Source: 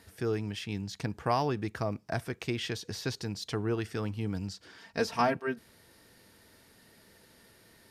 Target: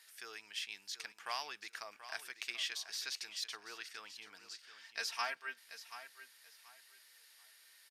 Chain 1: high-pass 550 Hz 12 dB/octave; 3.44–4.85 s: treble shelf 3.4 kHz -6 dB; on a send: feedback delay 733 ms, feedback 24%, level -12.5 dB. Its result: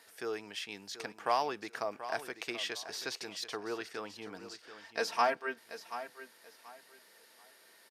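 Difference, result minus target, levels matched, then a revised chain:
500 Hz band +12.5 dB
high-pass 1.9 kHz 12 dB/octave; 3.44–4.85 s: treble shelf 3.4 kHz -6 dB; on a send: feedback delay 733 ms, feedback 24%, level -12.5 dB

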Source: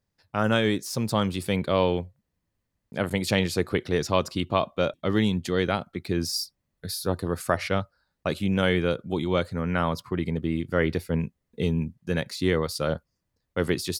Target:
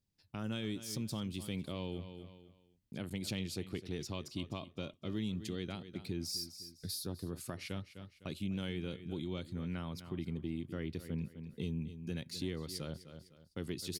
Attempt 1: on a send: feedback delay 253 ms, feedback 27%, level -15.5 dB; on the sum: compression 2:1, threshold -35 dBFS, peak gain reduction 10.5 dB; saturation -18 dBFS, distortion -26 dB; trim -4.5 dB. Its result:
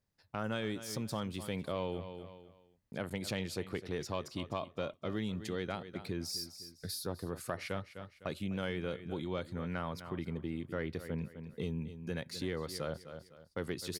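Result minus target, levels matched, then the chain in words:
1 kHz band +7.5 dB
on a send: feedback delay 253 ms, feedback 27%, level -15.5 dB; on the sum: compression 2:1, threshold -35 dBFS, peak gain reduction 10.5 dB; high-order bell 950 Hz -9.5 dB 2.4 oct; saturation -18 dBFS, distortion -32 dB; trim -4.5 dB

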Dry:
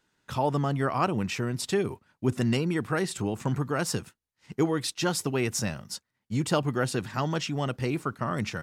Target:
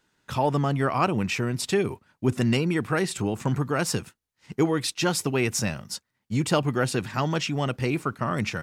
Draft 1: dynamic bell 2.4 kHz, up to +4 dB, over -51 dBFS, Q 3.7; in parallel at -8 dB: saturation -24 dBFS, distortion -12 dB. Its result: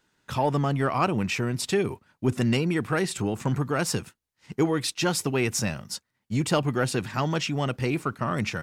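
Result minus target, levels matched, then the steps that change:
saturation: distortion +11 dB
change: saturation -15 dBFS, distortion -23 dB

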